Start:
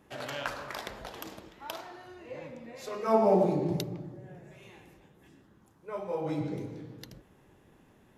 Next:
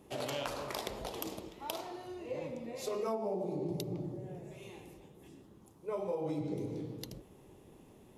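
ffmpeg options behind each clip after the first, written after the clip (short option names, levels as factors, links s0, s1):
-af "equalizer=f=400:t=o:w=0.67:g=4,equalizer=f=1600:t=o:w=0.67:g=-11,equalizer=f=10000:t=o:w=0.67:g=5,acompressor=threshold=0.02:ratio=20,volume=1.26"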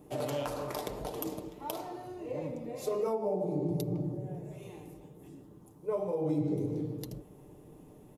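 -af "equalizer=f=3300:w=0.41:g=-9.5,aecho=1:1:6.7:0.4,volume=1.68"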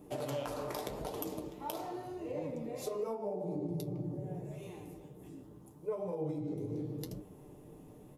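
-af "acompressor=threshold=0.02:ratio=6,flanger=delay=9.6:depth=9.7:regen=56:speed=0.83:shape=triangular,volume=1.58"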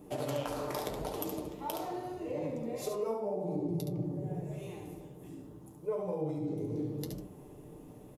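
-af "aecho=1:1:70:0.473,volume=1.26"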